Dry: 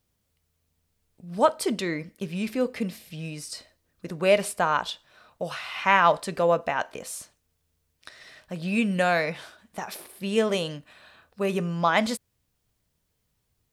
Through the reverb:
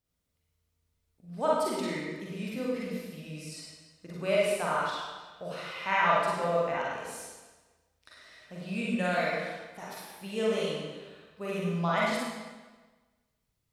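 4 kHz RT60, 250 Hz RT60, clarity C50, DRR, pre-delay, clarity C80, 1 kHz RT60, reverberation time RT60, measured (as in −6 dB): 1.2 s, 1.3 s, −2.5 dB, −6.0 dB, 38 ms, 0.5 dB, 1.3 s, 1.3 s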